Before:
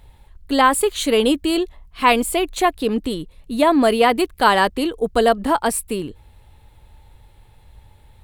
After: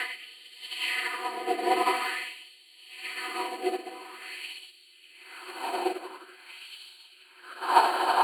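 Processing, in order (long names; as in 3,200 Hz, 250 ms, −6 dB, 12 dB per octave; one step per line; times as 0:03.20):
parametric band 310 Hz +8 dB 0.85 octaves
hum removal 85.04 Hz, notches 31
in parallel at −2 dB: brickwall limiter −12.5 dBFS, peak gain reduction 11.5 dB
on the sum: extreme stretch with random phases 48×, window 0.50 s, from 0:04.16
auto-filter high-pass sine 0.47 Hz 750–3,500 Hz
rotating-speaker cabinet horn 0.85 Hz
expander for the loud parts 2.5 to 1, over −31 dBFS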